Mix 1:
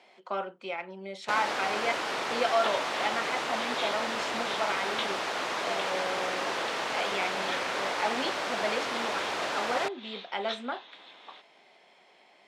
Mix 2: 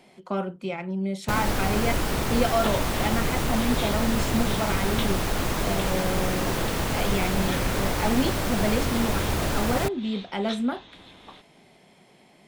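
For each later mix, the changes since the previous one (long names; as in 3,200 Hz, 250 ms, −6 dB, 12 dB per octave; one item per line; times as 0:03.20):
master: remove band-pass filter 580–4,800 Hz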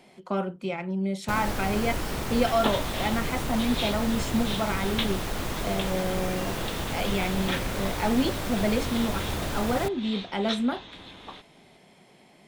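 first sound −5.0 dB
second sound +4.0 dB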